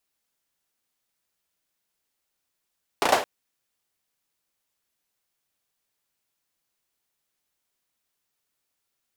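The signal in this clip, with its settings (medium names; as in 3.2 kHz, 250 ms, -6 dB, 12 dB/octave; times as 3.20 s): hand clap length 0.22 s, bursts 4, apart 34 ms, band 660 Hz, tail 0.35 s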